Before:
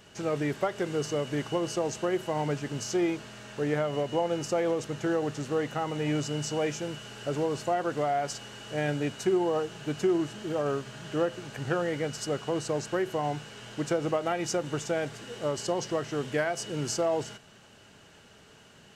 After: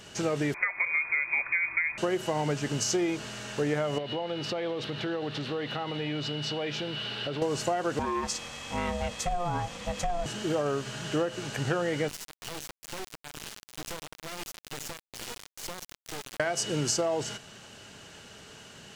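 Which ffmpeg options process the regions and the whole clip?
-filter_complex "[0:a]asettb=1/sr,asplit=3[a][b][c];[a]atrim=end=0.544[d];[b]atrim=start=0.54:end=1.98,asetpts=PTS-STARTPTS,afade=t=in:d=0.004:c=qsin,afade=t=out:st=1.436:d=0.004:c=qsin,lowpass=f=2.2k:t=q:w=0.5098,lowpass=f=2.2k:t=q:w=0.6013,lowpass=f=2.2k:t=q:w=0.9,lowpass=f=2.2k:t=q:w=2.563,afreqshift=-2600,asubboost=boost=5:cutoff=220[e];[c]atrim=start=1.976[f];[d][e]acrossfade=d=0.004:c1=hsin:c2=qsin[g];[g][f]acrossfade=d=0.004:c1=qsin:c2=hsin,asettb=1/sr,asplit=3[h][i][j];[h]atrim=end=3.984[k];[i]atrim=start=3.98:end=7.42,asetpts=PTS-STARTPTS,afade=t=in:d=0.004:c=qsin,afade=t=out:st=3.436:d=0.004:c=qsin,highpass=73,highshelf=f=5.2k:t=q:w=3:g=-11,acompressor=threshold=-36dB:ratio=3:attack=3.2:release=140:knee=1:detection=peak[l];[j]atrim=start=7.416[m];[k][l]acrossfade=d=0.004:c1=hsin:c2=qsin[n];[n][m]acrossfade=d=0.004:c1=qsin:c2=hsin,asettb=1/sr,asplit=3[o][p][q];[o]atrim=end=7.994[r];[p]atrim=start=7.99:end=10.26,asetpts=PTS-STARTPTS,afade=t=in:d=0.004:c=qsin,afade=t=out:st=2.266:d=0.004:c=qsin,aeval=exprs='val(0)*sin(2*PI*350*n/s)':c=same,acompressor=threshold=-34dB:ratio=1.5:attack=3.2:release=140:knee=1:detection=peak[s];[q]atrim=start=10.256[t];[r][s]acrossfade=d=0.004:c1=hsin:c2=qsin[u];[u][t]acrossfade=d=0.004:c1=qsin:c2=hsin,asettb=1/sr,asplit=3[v][w][x];[v]atrim=end=12.084[y];[w]atrim=start=12.08:end=16.4,asetpts=PTS-STARTPTS,afade=t=in:d=0.004:c=qsin,afade=t=out:st=4.316:d=0.004:c=qsin,acompressor=threshold=-39dB:ratio=5:attack=3.2:release=140:knee=1:detection=peak,tremolo=f=2.2:d=0.53,acrusher=bits=4:dc=4:mix=0:aa=0.000001[z];[x]atrim=start=16.396[aa];[y][z]acrossfade=d=0.004:c1=hsin:c2=qsin[ab];[ab][aa]acrossfade=d=0.004:c1=qsin:c2=hsin,equalizer=f=6k:t=o:w=2.4:g=4.5,acompressor=threshold=-29dB:ratio=6,volume=4.5dB"

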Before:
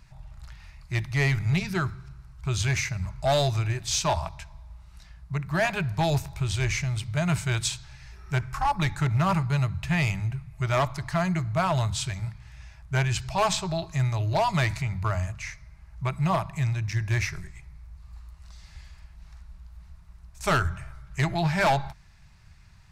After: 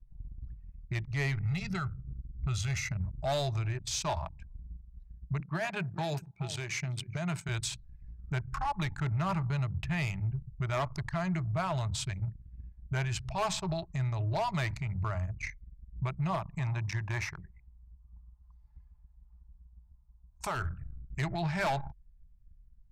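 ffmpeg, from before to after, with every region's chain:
-filter_complex "[0:a]asettb=1/sr,asplit=3[a][b][c];[a]atrim=end=1.434[d];[b]atrim=start=1.43:end=2.92,asetpts=PTS-STARTPTS,afade=t=in:d=0.004:c=qsin,afade=t=out:st=1.486:d=0.004:c=qsin,bandreject=f=640:w=6.2,aecho=1:1:1.5:0.63,atrim=end_sample=65709[e];[c]atrim=start=2.916[f];[d][e]acrossfade=d=0.004:c1=hsin:c2=qsin[g];[g][f]acrossfade=d=0.004:c1=qsin:c2=hsin,asettb=1/sr,asplit=3[h][i][j];[h]atrim=end=5.404[k];[i]atrim=start=5.4:end=7.49,asetpts=PTS-STARTPTS,afade=t=in:d=0.004:c=qsin,afade=t=out:st=2.086:d=0.004:c=qsin,highpass=f=140:w=0.5412,highpass=f=140:w=1.3066,aecho=1:1:409:0.158,atrim=end_sample=92169[l];[j]atrim=start=7.486[m];[k][l]acrossfade=d=0.004:c1=hsin:c2=qsin[n];[n][m]acrossfade=d=0.004:c1=qsin:c2=hsin,asettb=1/sr,asplit=3[o][p][q];[o]atrim=end=16.594[r];[p]atrim=start=16.59:end=20.55,asetpts=PTS-STARTPTS,afade=t=in:d=0.004:c=qsin,afade=t=out:st=3.956:d=0.004:c=qsin,highpass=f=98:p=1,equalizer=f=920:t=o:w=0.82:g=11.5[s];[q]atrim=start=20.546[t];[r][s]acrossfade=d=0.004:c1=hsin:c2=qsin[u];[u][t]acrossfade=d=0.004:c1=qsin:c2=hsin,anlmdn=6.31,alimiter=level_in=3.5dB:limit=-24dB:level=0:latency=1:release=308,volume=-3.5dB,volume=2dB"

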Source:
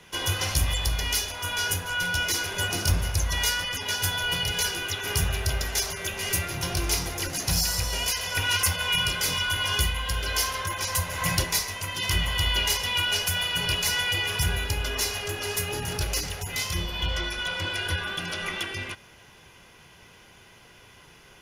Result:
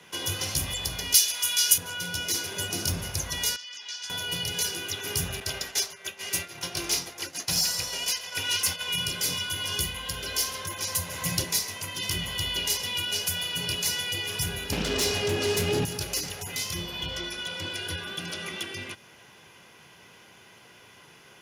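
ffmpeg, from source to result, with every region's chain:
-filter_complex "[0:a]asettb=1/sr,asplit=3[a][b][c];[a]atrim=end=1.144[d];[b]atrim=start=1.14:end=1.78,asetpts=PTS-STARTPTS,afade=t=in:d=0.004:c=qsin,afade=t=out:st=0.636:d=0.004:c=qsin,highpass=f=130:p=1,tiltshelf=f=1.2k:g=-10[e];[c]atrim=start=1.776[f];[d][e]acrossfade=d=0.004:c1=hsin:c2=qsin[g];[g][f]acrossfade=d=0.004:c1=qsin:c2=hsin,asettb=1/sr,asplit=3[h][i][j];[h]atrim=end=3.564[k];[i]atrim=start=3.56:end=4.1,asetpts=PTS-STARTPTS,afade=t=in:d=0.004:c=qsin,afade=t=out:st=0.536:d=0.004:c=qsin,lowpass=f=5.7k:w=0.5412,lowpass=f=5.7k:w=1.3066,aderivative[l];[j]atrim=start=4.096[m];[k][l]acrossfade=d=0.004:c1=hsin:c2=qsin[n];[n][m]acrossfade=d=0.004:c1=qsin:c2=hsin,asettb=1/sr,asplit=3[o][p][q];[o]atrim=end=5.404[r];[p]atrim=start=5.4:end=8.88,asetpts=PTS-STARTPTS,afade=t=in:d=0.004:c=qsin,afade=t=out:st=3.476:d=0.004:c=qsin,agate=range=-33dB:threshold=-25dB:ratio=3:release=100:detection=peak,asplit=2[s][t];[t]highpass=f=720:p=1,volume=10dB,asoftclip=type=tanh:threshold=-10dB[u];[s][u]amix=inputs=2:normalize=0,lowpass=f=5.5k:p=1,volume=-6dB[v];[q]atrim=start=8.876[w];[r][v]acrossfade=d=0.004:c1=hsin:c2=qsin[x];[x][w]acrossfade=d=0.004:c1=qsin:c2=hsin,asettb=1/sr,asplit=3[y][z][aa];[y]atrim=end=14.724[ab];[z]atrim=start=14.72:end=15.85,asetpts=PTS-STARTPTS,afade=t=in:d=0.004:c=qsin,afade=t=out:st=1.126:d=0.004:c=qsin,aemphasis=mode=reproduction:type=75kf,aeval=exprs='0.133*sin(PI/2*3.16*val(0)/0.133)':c=same[ac];[aa]atrim=start=15.846[ad];[ab][ac]acrossfade=d=0.004:c1=hsin:c2=qsin[ae];[ae][ad]acrossfade=d=0.004:c1=qsin:c2=hsin,highpass=130,acrossover=split=490|3000[af][ag][ah];[ag]acompressor=threshold=-43dB:ratio=2.5[ai];[af][ai][ah]amix=inputs=3:normalize=0"

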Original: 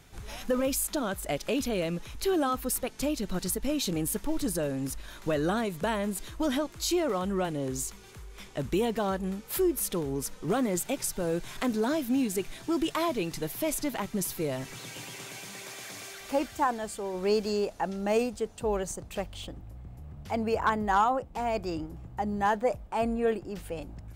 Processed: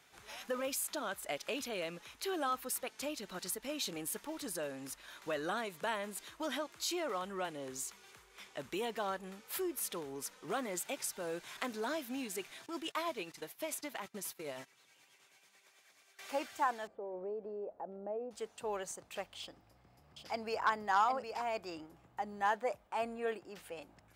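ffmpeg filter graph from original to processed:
-filter_complex "[0:a]asettb=1/sr,asplit=3[a][b][c];[a]atrim=end=12.664[d];[b]atrim=start=12.66:end=16.19,asetpts=PTS-STARTPTS,afade=t=in:d=0.004:c=qsin,afade=t=out:st=3.526:d=0.004:c=qsin,agate=range=-16dB:threshold=-38dB:ratio=16:release=100:detection=peak,tremolo=f=9.3:d=0.45[e];[c]atrim=start=16.186[f];[d][e]acrossfade=d=0.004:c1=hsin:c2=qsin[g];[g][f]acrossfade=d=0.004:c1=qsin:c2=hsin,asettb=1/sr,asplit=3[h][i][j];[h]atrim=end=16.874[k];[i]atrim=start=16.87:end=18.31,asetpts=PTS-STARTPTS,afade=t=in:d=0.004:c=qsin,afade=t=out:st=1.436:d=0.004:c=qsin,acompressor=threshold=-32dB:ratio=3:attack=3.2:release=140:knee=1:detection=peak,lowpass=f=580:t=q:w=1.7[l];[j]atrim=start=18.306[m];[k][l]acrossfade=d=0.004:c1=hsin:c2=qsin[n];[n][m]acrossfade=d=0.004:c1=qsin:c2=hsin,asettb=1/sr,asplit=3[o][p][q];[o]atrim=end=19.404[r];[p]atrim=start=19.4:end=21.42,asetpts=PTS-STARTPTS,afade=t=in:d=0.004:c=qsin,afade=t=out:st=2.016:d=0.004:c=qsin,equalizer=f=5k:w=5.1:g=11.5,aecho=1:1:763:0.447,atrim=end_sample=89082[s];[q]atrim=start=21.416[t];[r][s]acrossfade=d=0.004:c1=hsin:c2=qsin[u];[u][t]acrossfade=d=0.004:c1=qsin:c2=hsin,highpass=f=1.4k:p=1,highshelf=f=3.3k:g=-8"

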